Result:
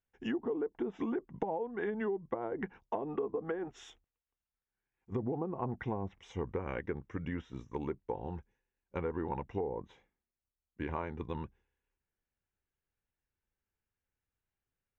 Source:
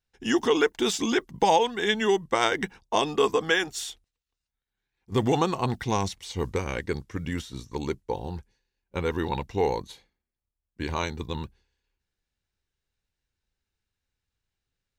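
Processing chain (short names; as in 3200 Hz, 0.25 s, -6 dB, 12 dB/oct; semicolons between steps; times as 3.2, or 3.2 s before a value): running mean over 10 samples; treble ducked by the level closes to 590 Hz, closed at -21 dBFS; low shelf 140 Hz -5.5 dB; compressor, threshold -28 dBFS, peak gain reduction 8.5 dB; gain -3.5 dB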